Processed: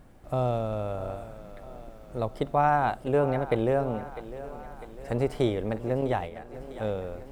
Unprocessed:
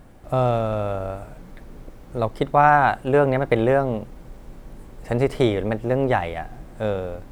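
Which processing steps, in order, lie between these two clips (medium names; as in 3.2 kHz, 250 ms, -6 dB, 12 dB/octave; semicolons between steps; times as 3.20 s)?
6.01–6.54 s: gate -25 dBFS, range -8 dB; dynamic bell 1.7 kHz, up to -6 dB, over -34 dBFS, Q 1; thinning echo 651 ms, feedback 60%, high-pass 200 Hz, level -14 dB; trim -6 dB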